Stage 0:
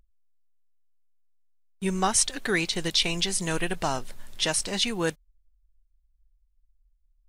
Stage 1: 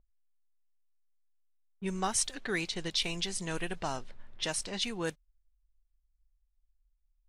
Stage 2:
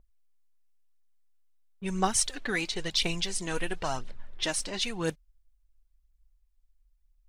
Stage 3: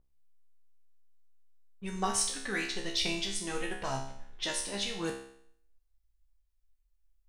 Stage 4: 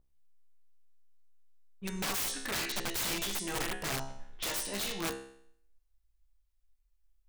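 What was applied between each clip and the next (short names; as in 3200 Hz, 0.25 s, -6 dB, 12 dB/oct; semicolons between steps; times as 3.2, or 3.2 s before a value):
low-pass opened by the level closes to 1000 Hz, open at -21 dBFS; gain -7.5 dB
phaser 0.98 Hz, delay 4.2 ms, feedback 44%; gain +2.5 dB
resonator 67 Hz, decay 0.64 s, harmonics all, mix 90%; gain +7 dB
wrapped overs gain 28 dB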